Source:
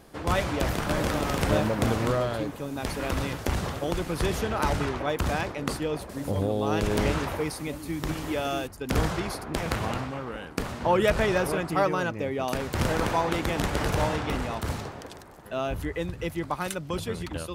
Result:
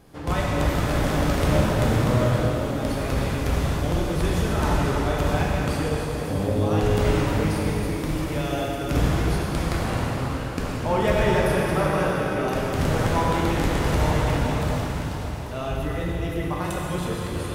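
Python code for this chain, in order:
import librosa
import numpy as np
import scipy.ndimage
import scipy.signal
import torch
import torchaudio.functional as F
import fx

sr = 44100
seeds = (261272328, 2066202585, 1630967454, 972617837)

y = fx.low_shelf(x, sr, hz=200.0, db=7.0)
y = fx.rev_plate(y, sr, seeds[0], rt60_s=4.5, hf_ratio=1.0, predelay_ms=0, drr_db=-5.0)
y = y * 10.0 ** (-4.0 / 20.0)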